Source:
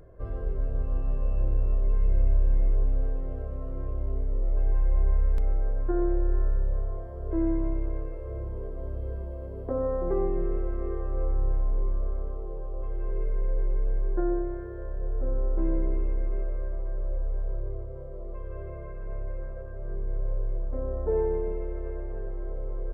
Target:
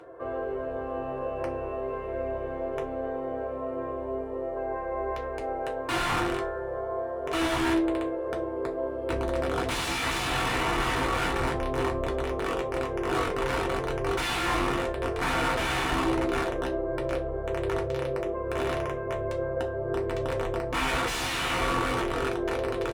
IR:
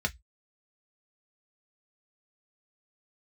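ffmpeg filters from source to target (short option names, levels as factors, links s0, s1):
-filter_complex "[0:a]asetnsamples=n=441:p=0,asendcmd='9.09 highpass f 200',highpass=480,aeval=exprs='(mod(59.6*val(0)+1,2)-1)/59.6':c=same,asplit=2[s0][s1];[s1]adelay=15,volume=0.251[s2];[s0][s2]amix=inputs=2:normalize=0[s3];[1:a]atrim=start_sample=2205,asetrate=22491,aresample=44100[s4];[s3][s4]afir=irnorm=-1:irlink=0,volume=1.19"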